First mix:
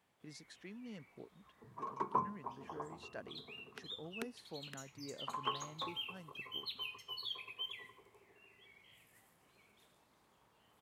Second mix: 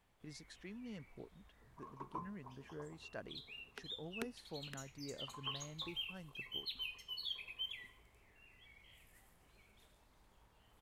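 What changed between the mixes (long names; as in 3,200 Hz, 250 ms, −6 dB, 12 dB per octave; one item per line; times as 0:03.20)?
second sound −12.0 dB
master: remove high-pass filter 140 Hz 12 dB per octave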